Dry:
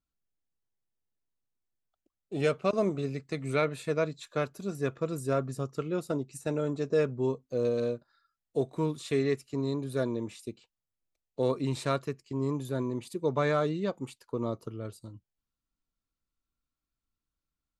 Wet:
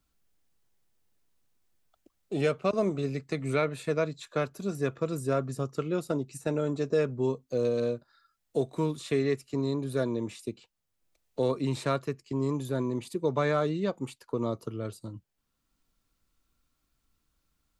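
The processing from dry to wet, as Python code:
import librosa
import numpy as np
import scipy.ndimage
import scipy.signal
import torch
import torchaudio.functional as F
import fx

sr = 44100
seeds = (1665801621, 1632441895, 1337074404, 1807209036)

y = fx.band_squash(x, sr, depth_pct=40)
y = y * librosa.db_to_amplitude(1.0)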